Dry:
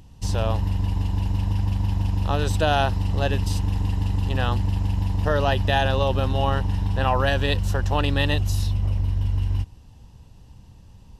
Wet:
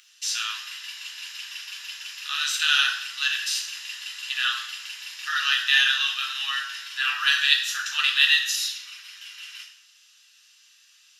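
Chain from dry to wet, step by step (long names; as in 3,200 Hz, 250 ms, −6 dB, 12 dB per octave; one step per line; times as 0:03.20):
Butterworth high-pass 1,400 Hz 48 dB per octave
convolution reverb RT60 0.65 s, pre-delay 3 ms, DRR −1 dB
level +2 dB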